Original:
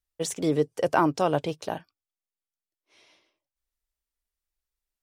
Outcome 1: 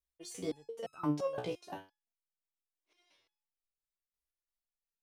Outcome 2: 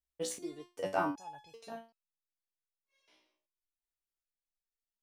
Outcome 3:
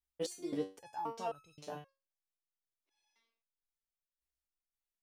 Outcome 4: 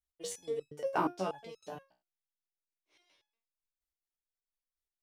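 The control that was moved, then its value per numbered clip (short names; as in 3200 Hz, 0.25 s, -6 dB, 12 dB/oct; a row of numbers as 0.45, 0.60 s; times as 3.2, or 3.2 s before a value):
stepped resonator, rate: 5.8, 2.6, 3.8, 8.4 Hz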